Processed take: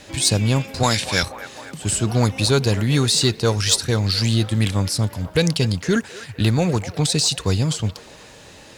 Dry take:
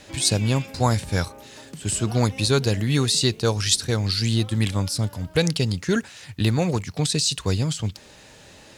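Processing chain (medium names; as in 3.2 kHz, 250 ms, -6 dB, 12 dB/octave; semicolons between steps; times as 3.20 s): 0.83–1.23 s: frequency weighting D; in parallel at -6 dB: hard clipper -18.5 dBFS, distortion -11 dB; on the sum: feedback echo behind a band-pass 247 ms, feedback 58%, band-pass 1 kHz, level -12 dB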